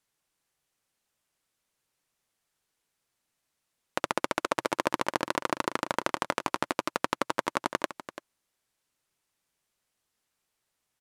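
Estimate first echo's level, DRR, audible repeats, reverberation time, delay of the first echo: −13.0 dB, no reverb audible, 1, no reverb audible, 338 ms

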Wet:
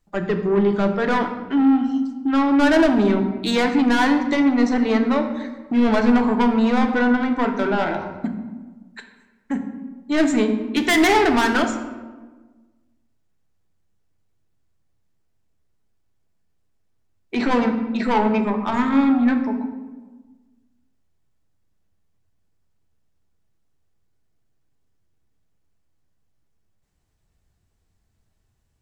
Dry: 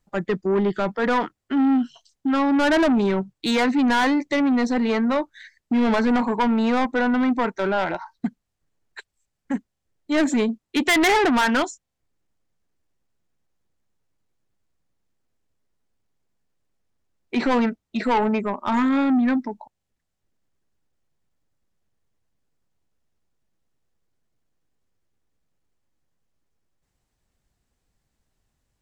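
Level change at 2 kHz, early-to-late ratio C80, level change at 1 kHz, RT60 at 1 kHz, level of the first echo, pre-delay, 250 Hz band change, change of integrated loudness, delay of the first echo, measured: +1.0 dB, 9.5 dB, +1.0 dB, 1.3 s, no echo audible, 3 ms, +3.0 dB, +2.0 dB, no echo audible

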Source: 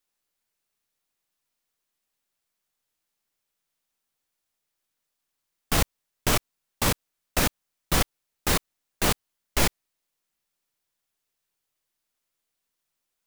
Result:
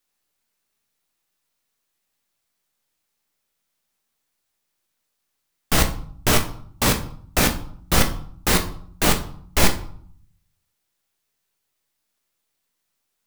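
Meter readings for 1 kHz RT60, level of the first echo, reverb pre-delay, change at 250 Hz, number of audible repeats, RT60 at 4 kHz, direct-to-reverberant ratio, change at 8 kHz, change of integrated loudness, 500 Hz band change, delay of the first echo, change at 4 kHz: 0.60 s, no echo audible, 17 ms, +6.5 dB, no echo audible, 0.40 s, 5.0 dB, +5.0 dB, +5.0 dB, +5.0 dB, no echo audible, +5.0 dB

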